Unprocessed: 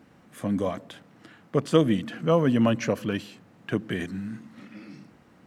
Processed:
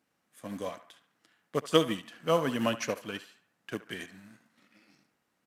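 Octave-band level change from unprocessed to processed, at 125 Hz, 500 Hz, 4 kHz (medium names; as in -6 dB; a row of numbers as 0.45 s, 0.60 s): -12.0 dB, -5.0 dB, +1.5 dB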